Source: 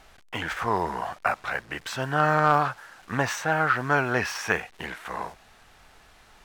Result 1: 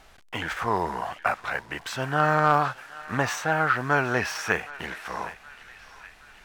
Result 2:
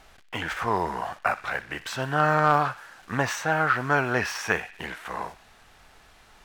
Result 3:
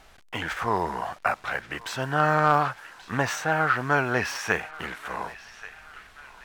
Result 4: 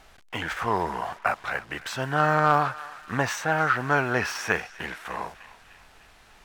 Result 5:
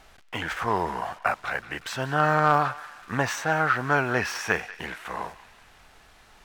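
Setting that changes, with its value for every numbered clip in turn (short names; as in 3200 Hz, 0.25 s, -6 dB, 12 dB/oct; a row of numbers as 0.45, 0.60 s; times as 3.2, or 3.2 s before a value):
narrowing echo, time: 769, 61, 1132, 301, 186 ms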